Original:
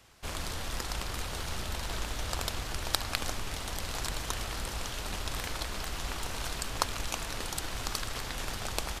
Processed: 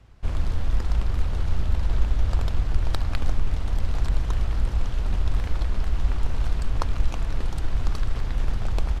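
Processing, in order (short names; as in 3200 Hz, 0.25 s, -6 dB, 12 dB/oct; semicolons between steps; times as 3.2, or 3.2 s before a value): RIAA curve playback; gain -1 dB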